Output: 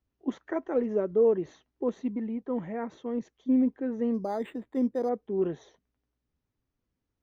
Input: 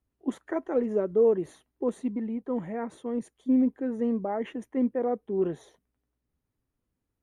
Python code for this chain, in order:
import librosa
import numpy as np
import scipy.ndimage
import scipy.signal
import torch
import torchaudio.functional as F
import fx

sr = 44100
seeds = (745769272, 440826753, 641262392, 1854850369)

y = scipy.signal.sosfilt(scipy.signal.ellip(4, 1.0, 40, 6200.0, 'lowpass', fs=sr, output='sos'), x)
y = fx.resample_linear(y, sr, factor=8, at=(4.14, 5.09))